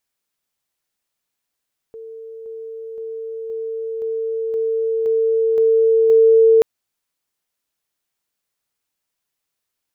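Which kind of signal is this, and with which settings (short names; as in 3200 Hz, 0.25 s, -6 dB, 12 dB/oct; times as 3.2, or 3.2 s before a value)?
level ladder 449 Hz -32 dBFS, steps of 3 dB, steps 9, 0.52 s 0.00 s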